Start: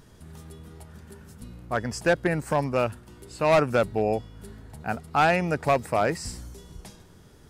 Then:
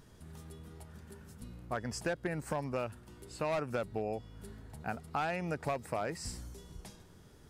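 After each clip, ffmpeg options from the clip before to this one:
ffmpeg -i in.wav -af "acompressor=threshold=-27dB:ratio=4,volume=-5.5dB" out.wav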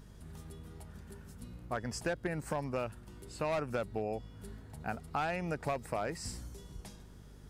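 ffmpeg -i in.wav -af "aeval=exprs='val(0)+0.00224*(sin(2*PI*50*n/s)+sin(2*PI*2*50*n/s)/2+sin(2*PI*3*50*n/s)/3+sin(2*PI*4*50*n/s)/4+sin(2*PI*5*50*n/s)/5)':channel_layout=same" out.wav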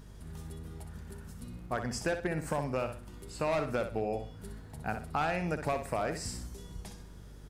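ffmpeg -i in.wav -af "aecho=1:1:62|124|186|248:0.376|0.113|0.0338|0.0101,volume=2.5dB" out.wav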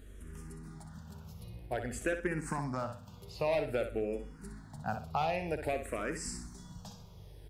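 ffmpeg -i in.wav -filter_complex "[0:a]asplit=2[link_01][link_02];[link_02]afreqshift=-0.52[link_03];[link_01][link_03]amix=inputs=2:normalize=1,volume=1dB" out.wav

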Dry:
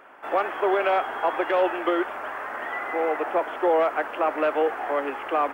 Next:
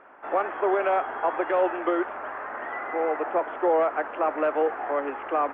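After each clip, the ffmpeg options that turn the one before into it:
ffmpeg -i in.wav -af "lowpass=1900,volume=-1dB" out.wav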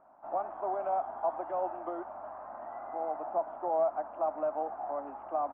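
ffmpeg -i in.wav -af "firequalizer=gain_entry='entry(180,0);entry(450,-17);entry(650,2);entry(1800,-23)':delay=0.05:min_phase=1,volume=-4.5dB" out.wav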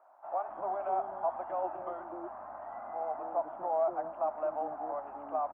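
ffmpeg -i in.wav -filter_complex "[0:a]acrossover=split=420[link_01][link_02];[link_01]adelay=250[link_03];[link_03][link_02]amix=inputs=2:normalize=0" out.wav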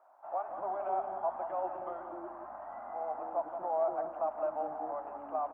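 ffmpeg -i in.wav -af "aecho=1:1:176:0.355,volume=-1.5dB" out.wav

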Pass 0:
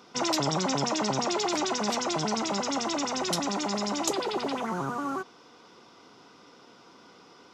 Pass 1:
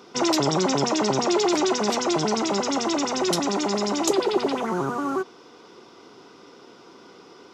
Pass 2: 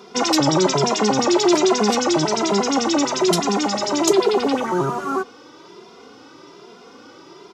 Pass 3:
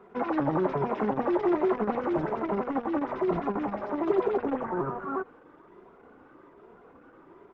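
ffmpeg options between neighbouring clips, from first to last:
ffmpeg -i in.wav -af "equalizer=frequency=380:width=2.4:gain=7.5,volume=3.5dB" out.wav
ffmpeg -i in.wav -filter_complex "[0:a]asplit=2[link_01][link_02];[link_02]adelay=2.5,afreqshift=1.2[link_03];[link_01][link_03]amix=inputs=2:normalize=1,volume=7.5dB" out.wav
ffmpeg -i in.wav -af "lowpass=frequency=1900:width=0.5412,lowpass=frequency=1900:width=1.3066,volume=-8.5dB" -ar 48000 -c:a libopus -b:a 10k out.opus

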